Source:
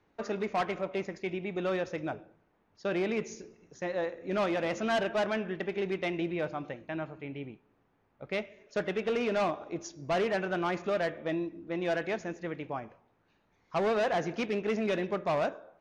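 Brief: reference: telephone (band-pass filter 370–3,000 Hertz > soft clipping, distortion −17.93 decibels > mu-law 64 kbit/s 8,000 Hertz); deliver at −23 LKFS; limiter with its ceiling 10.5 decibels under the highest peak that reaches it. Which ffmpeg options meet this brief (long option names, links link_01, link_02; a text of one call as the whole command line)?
ffmpeg -i in.wav -af "alimiter=level_in=11dB:limit=-24dB:level=0:latency=1,volume=-11dB,highpass=370,lowpass=3000,asoftclip=threshold=-35dB,volume=23dB" -ar 8000 -c:a pcm_mulaw out.wav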